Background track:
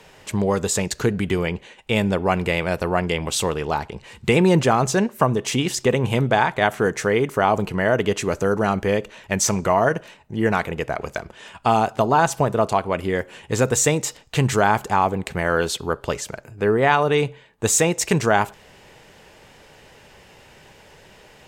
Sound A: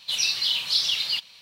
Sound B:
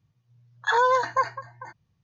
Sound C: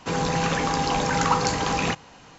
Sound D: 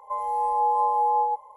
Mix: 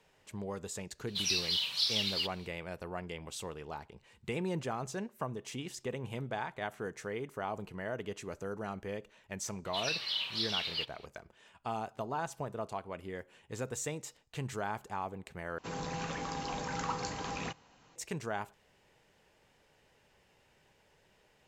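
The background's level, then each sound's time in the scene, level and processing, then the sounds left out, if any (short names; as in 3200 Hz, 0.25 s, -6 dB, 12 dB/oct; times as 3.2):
background track -19.5 dB
1.07 add A -8 dB
9.65 add A -5 dB + tone controls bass -6 dB, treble -14 dB
15.58 replace with C -14.5 dB
not used: B, D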